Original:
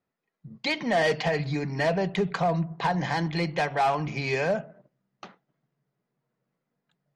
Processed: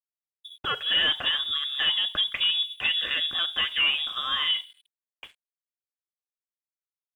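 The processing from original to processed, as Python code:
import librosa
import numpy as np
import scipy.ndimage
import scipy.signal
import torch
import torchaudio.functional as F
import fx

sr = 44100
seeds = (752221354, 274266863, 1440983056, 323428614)

y = fx.freq_invert(x, sr, carrier_hz=3600)
y = np.sign(y) * np.maximum(np.abs(y) - 10.0 ** (-57.0 / 20.0), 0.0)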